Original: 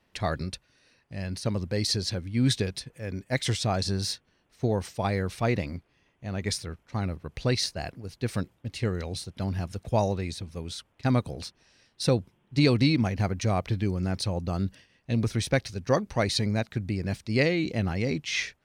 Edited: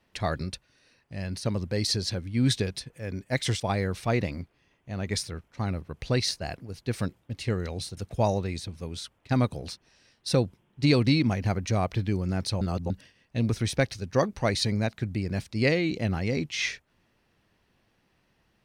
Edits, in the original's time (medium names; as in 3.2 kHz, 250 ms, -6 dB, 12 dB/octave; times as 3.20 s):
3.60–4.95 s: delete
9.32–9.71 s: delete
14.35–14.64 s: reverse